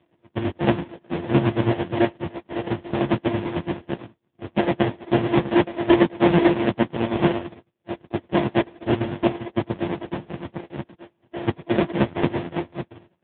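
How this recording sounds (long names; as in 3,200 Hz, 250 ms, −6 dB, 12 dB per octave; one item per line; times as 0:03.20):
a buzz of ramps at a fixed pitch in blocks of 128 samples
chopped level 9 Hz, depth 60%, duty 45%
aliases and images of a low sample rate 1,300 Hz, jitter 20%
AMR narrowband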